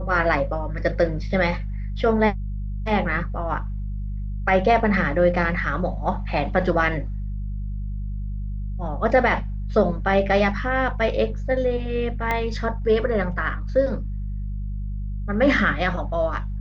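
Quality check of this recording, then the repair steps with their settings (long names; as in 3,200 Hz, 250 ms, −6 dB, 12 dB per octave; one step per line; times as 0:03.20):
mains hum 50 Hz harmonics 4 −28 dBFS
0:12.31: click −11 dBFS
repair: click removal
hum removal 50 Hz, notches 4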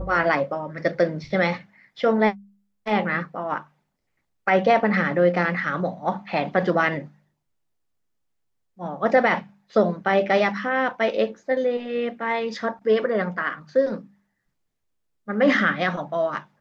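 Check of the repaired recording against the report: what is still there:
0:12.31: click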